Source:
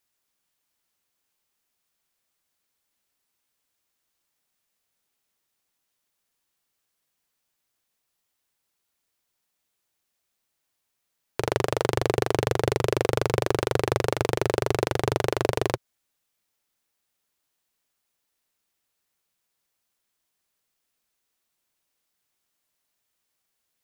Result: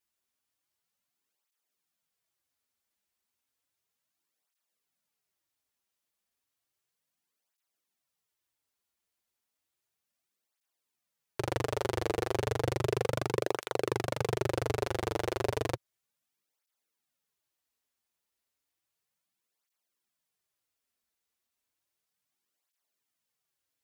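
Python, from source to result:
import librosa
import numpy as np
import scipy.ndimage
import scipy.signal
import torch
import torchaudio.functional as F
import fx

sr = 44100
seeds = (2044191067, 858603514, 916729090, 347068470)

y = fx.flanger_cancel(x, sr, hz=0.33, depth_ms=7.8)
y = F.gain(torch.from_numpy(y), -4.0).numpy()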